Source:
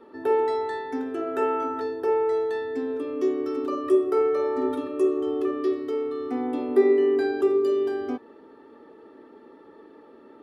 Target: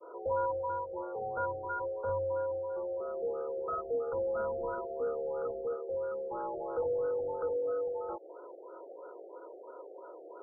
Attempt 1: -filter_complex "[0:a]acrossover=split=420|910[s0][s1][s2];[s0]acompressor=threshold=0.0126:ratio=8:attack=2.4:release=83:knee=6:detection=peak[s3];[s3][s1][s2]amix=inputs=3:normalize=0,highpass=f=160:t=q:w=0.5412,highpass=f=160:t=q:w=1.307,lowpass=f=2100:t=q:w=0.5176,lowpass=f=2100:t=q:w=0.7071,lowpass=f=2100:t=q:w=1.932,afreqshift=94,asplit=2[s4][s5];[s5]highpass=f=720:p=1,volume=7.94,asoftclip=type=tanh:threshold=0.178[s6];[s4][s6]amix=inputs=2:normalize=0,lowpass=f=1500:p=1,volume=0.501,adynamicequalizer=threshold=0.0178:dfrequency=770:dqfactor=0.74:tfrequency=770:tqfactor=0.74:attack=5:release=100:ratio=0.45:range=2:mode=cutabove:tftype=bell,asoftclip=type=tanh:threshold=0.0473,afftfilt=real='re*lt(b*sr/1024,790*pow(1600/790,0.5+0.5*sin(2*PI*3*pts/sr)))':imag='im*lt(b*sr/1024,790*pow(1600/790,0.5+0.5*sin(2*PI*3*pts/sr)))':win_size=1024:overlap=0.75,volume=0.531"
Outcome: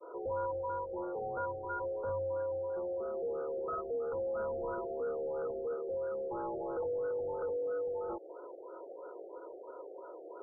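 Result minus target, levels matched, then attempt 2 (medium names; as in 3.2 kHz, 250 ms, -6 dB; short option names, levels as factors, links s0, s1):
compression: peak gain reduction -9.5 dB; saturation: distortion +11 dB
-filter_complex "[0:a]acrossover=split=420|910[s0][s1][s2];[s0]acompressor=threshold=0.00355:ratio=8:attack=2.4:release=83:knee=6:detection=peak[s3];[s3][s1][s2]amix=inputs=3:normalize=0,highpass=f=160:t=q:w=0.5412,highpass=f=160:t=q:w=1.307,lowpass=f=2100:t=q:w=0.5176,lowpass=f=2100:t=q:w=0.7071,lowpass=f=2100:t=q:w=1.932,afreqshift=94,asplit=2[s4][s5];[s5]highpass=f=720:p=1,volume=7.94,asoftclip=type=tanh:threshold=0.178[s6];[s4][s6]amix=inputs=2:normalize=0,lowpass=f=1500:p=1,volume=0.501,adynamicequalizer=threshold=0.0178:dfrequency=770:dqfactor=0.74:tfrequency=770:tqfactor=0.74:attack=5:release=100:ratio=0.45:range=2:mode=cutabove:tftype=bell,asoftclip=type=tanh:threshold=0.119,afftfilt=real='re*lt(b*sr/1024,790*pow(1600/790,0.5+0.5*sin(2*PI*3*pts/sr)))':imag='im*lt(b*sr/1024,790*pow(1600/790,0.5+0.5*sin(2*PI*3*pts/sr)))':win_size=1024:overlap=0.75,volume=0.531"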